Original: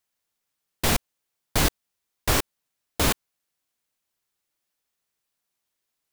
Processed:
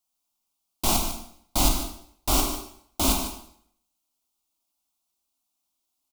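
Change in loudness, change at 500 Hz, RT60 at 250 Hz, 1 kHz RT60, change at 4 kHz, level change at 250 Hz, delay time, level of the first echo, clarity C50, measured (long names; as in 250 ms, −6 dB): 0.0 dB, −2.5 dB, 0.65 s, 0.65 s, 0.0 dB, +1.5 dB, 149 ms, −10.5 dB, 4.5 dB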